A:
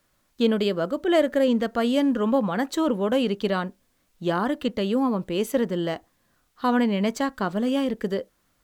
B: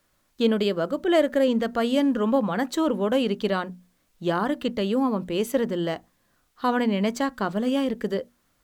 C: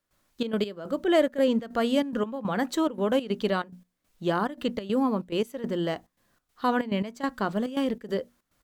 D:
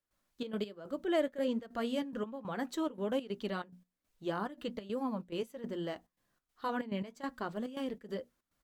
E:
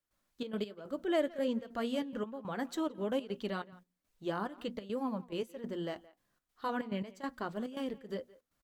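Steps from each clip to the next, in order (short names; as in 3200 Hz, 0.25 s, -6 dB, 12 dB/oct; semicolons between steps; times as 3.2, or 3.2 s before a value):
notches 60/120/180/240 Hz
step gate ".xxx.x..xxxx.xx" 141 bpm -12 dB; gain -1.5 dB
flange 1.2 Hz, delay 1.8 ms, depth 5.3 ms, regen -54%; gain -6 dB
speakerphone echo 0.17 s, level -20 dB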